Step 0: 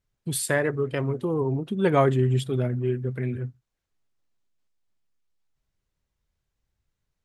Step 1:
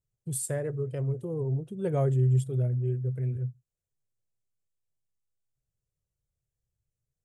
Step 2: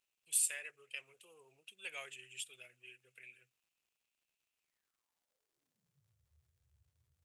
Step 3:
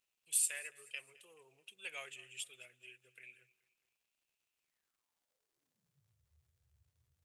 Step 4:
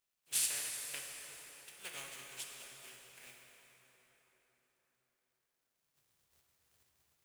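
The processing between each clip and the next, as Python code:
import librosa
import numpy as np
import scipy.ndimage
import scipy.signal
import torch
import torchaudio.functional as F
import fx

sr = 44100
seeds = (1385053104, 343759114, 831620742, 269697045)

y1 = fx.graphic_eq(x, sr, hz=(125, 250, 500, 1000, 2000, 4000, 8000), db=(11, -8, 6, -9, -7, -10, 8))
y1 = F.gain(torch.from_numpy(y1), -9.0).numpy()
y2 = fx.filter_sweep_highpass(y1, sr, from_hz=2600.0, to_hz=76.0, start_s=4.61, end_s=6.25, q=8.0)
y2 = fx.dmg_crackle(y2, sr, seeds[0], per_s=220.0, level_db=-73.0)
y2 = F.gain(torch.from_numpy(y2), 1.0).numpy()
y3 = fx.echo_feedback(y2, sr, ms=214, feedback_pct=44, wet_db=-21.5)
y4 = fx.spec_flatten(y3, sr, power=0.33)
y4 = fx.rev_plate(y4, sr, seeds[1], rt60_s=4.9, hf_ratio=0.65, predelay_ms=0, drr_db=0.0)
y4 = F.gain(torch.from_numpy(y4), -1.5).numpy()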